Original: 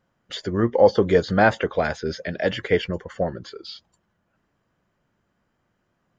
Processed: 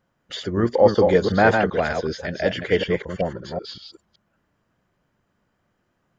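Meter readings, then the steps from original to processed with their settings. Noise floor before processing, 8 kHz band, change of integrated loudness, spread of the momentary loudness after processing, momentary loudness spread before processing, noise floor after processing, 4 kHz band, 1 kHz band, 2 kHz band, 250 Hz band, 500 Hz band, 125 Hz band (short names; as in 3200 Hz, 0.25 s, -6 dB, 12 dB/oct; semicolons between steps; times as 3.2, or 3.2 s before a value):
-73 dBFS, n/a, +1.5 dB, 16 LU, 19 LU, -72 dBFS, +1.5 dB, +1.5 dB, +1.5 dB, +1.5 dB, +1.0 dB, +1.5 dB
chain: reverse delay 0.189 s, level -4.5 dB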